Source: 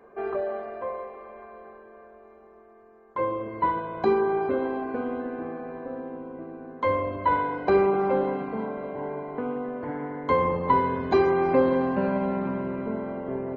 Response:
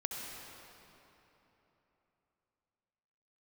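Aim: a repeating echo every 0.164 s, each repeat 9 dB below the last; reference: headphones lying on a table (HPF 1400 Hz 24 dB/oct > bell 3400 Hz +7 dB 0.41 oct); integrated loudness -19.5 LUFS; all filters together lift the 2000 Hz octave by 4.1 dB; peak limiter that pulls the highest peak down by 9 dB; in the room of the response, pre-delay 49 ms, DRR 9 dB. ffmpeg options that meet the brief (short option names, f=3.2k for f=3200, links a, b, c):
-filter_complex "[0:a]equalizer=f=2k:t=o:g=6,alimiter=limit=-17.5dB:level=0:latency=1,aecho=1:1:164|328|492|656:0.355|0.124|0.0435|0.0152,asplit=2[a][b];[1:a]atrim=start_sample=2205,adelay=49[c];[b][c]afir=irnorm=-1:irlink=0,volume=-11dB[d];[a][d]amix=inputs=2:normalize=0,highpass=f=1.4k:w=0.5412,highpass=f=1.4k:w=1.3066,equalizer=f=3.4k:t=o:w=0.41:g=7,volume=17.5dB"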